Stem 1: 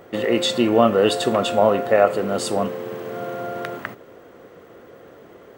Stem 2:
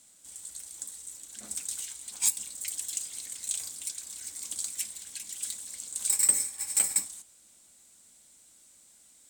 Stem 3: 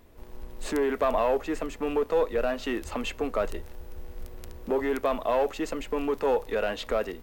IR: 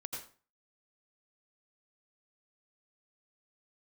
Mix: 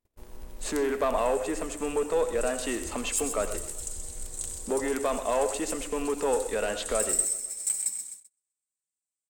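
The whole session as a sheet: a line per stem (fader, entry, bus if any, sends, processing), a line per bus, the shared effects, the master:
muted
−15.5 dB, 0.90 s, send −3.5 dB, echo send −5 dB, no processing
−4.5 dB, 0.00 s, send −5 dB, echo send −13.5 dB, no processing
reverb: on, RT60 0.40 s, pre-delay 77 ms
echo: repeating echo 128 ms, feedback 54%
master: noise gate −52 dBFS, range −30 dB; parametric band 8,600 Hz +9.5 dB 1.3 octaves

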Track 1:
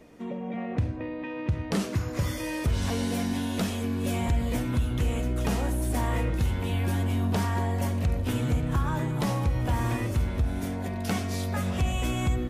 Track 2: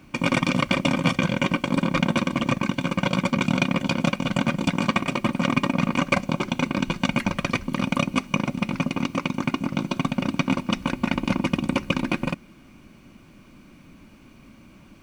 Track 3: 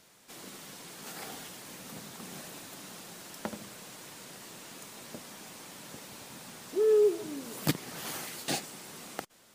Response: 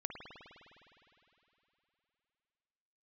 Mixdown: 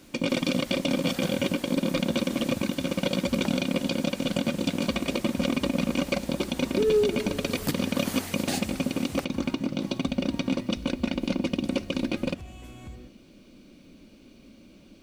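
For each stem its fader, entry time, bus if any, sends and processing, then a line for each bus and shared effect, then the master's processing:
−17.0 dB, 0.60 s, no send, no processing
−4.0 dB, 0.00 s, no send, octave-band graphic EQ 125/250/500/1,000/2,000/4,000 Hz −6/+3/+8/−9/−4/+8 dB
−0.5 dB, 0.00 s, send −6.5 dB, no processing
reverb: on, RT60 3.2 s, pre-delay 51 ms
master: brickwall limiter −14 dBFS, peak gain reduction 6 dB

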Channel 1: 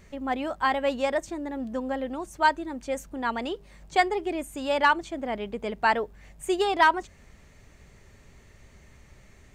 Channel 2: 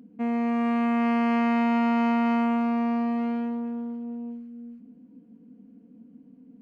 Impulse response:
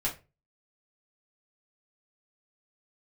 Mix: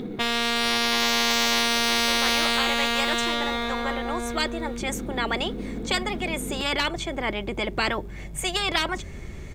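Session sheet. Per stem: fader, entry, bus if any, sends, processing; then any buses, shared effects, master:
−11.5 dB, 1.95 s, no send, no processing
+2.0 dB, 0.00 s, send −12 dB, running median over 41 samples; parametric band 3,700 Hz +14.5 dB 0.25 octaves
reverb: on, RT60 0.30 s, pre-delay 4 ms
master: low-shelf EQ 220 Hz +11 dB; hollow resonant body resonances 360/2,200/3,400 Hz, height 11 dB; every bin compressed towards the loudest bin 10 to 1

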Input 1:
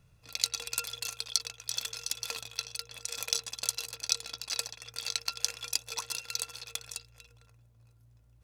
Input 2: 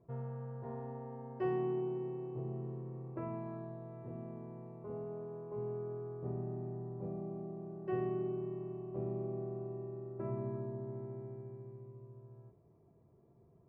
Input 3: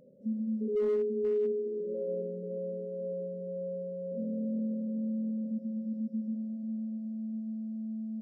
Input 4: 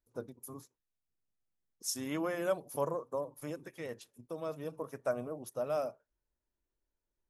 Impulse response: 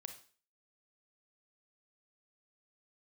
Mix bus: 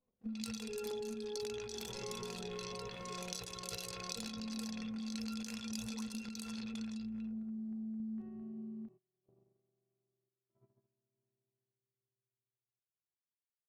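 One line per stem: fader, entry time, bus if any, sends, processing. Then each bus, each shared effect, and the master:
−6.0 dB, 0.00 s, no send, no echo send, low-pass that shuts in the quiet parts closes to 1,100 Hz, open at −32 dBFS; level that may fall only so fast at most 30 dB per second
−19.0 dB, 0.30 s, no send, no echo send, no processing
+0.5 dB, 0.00 s, send −17.5 dB, echo send −6.5 dB, lower of the sound and its delayed copy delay 4.5 ms; auto-filter notch saw down 2.2 Hz 570–1,700 Hz
muted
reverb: on, RT60 0.40 s, pre-delay 28 ms
echo: single-tap delay 669 ms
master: noise gate −54 dBFS, range −25 dB; sample-and-hold tremolo; downward compressor, threshold −40 dBFS, peak gain reduction 13.5 dB

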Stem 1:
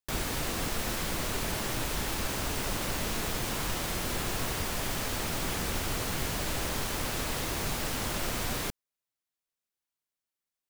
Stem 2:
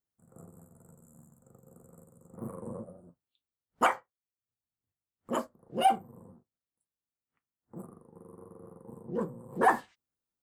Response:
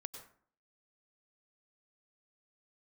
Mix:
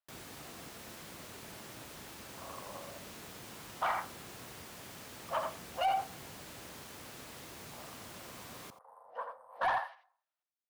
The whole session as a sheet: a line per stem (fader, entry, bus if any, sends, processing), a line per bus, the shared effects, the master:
−15.5 dB, 0.00 s, no send, echo send −17 dB, high-pass filter 100 Hz 12 dB per octave
+1.5 dB, 0.00 s, send −7 dB, echo send −4.5 dB, elliptic high-pass filter 610 Hz, stop band 40 dB; brickwall limiter −23 dBFS, peak gain reduction 10.5 dB; moving average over 6 samples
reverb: on, RT60 0.55 s, pre-delay 87 ms
echo: single-tap delay 85 ms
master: soft clipping −24.5 dBFS, distortion −15 dB

